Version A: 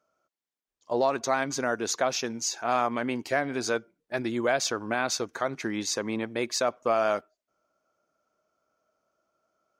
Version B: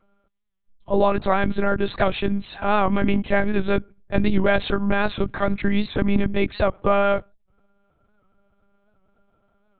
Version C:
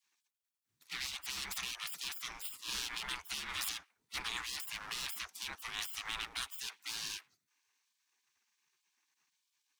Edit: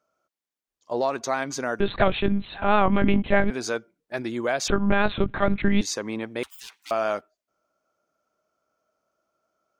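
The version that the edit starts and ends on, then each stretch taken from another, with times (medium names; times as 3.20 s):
A
1.80–3.50 s: from B
4.68–5.81 s: from B
6.43–6.91 s: from C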